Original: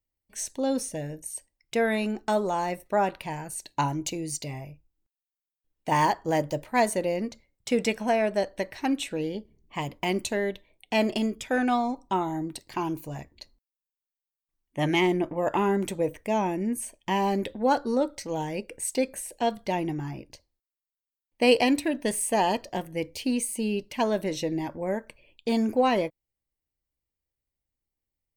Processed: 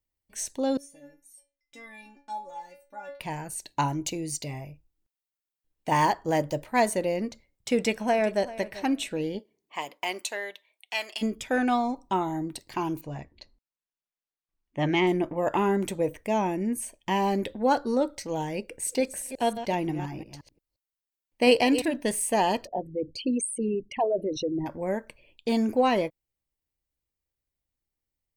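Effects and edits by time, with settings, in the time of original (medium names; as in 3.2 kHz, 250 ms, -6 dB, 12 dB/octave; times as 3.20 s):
0.77–3.20 s: inharmonic resonator 280 Hz, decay 0.36 s, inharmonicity 0.002
7.74–8.45 s: echo throw 390 ms, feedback 15%, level -16.5 dB
9.38–11.21 s: high-pass 360 Hz -> 1.5 kHz
13.01–15.07 s: distance through air 110 m
18.65–21.94 s: chunks repeated in reverse 176 ms, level -11 dB
22.67–24.66 s: resonances exaggerated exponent 3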